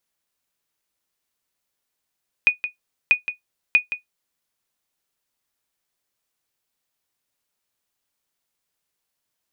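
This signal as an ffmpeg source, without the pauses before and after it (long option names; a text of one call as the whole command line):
ffmpeg -f lavfi -i "aevalsrc='0.501*(sin(2*PI*2470*mod(t,0.64))*exp(-6.91*mod(t,0.64)/0.13)+0.266*sin(2*PI*2470*max(mod(t,0.64)-0.17,0))*exp(-6.91*max(mod(t,0.64)-0.17,0)/0.13))':duration=1.92:sample_rate=44100" out.wav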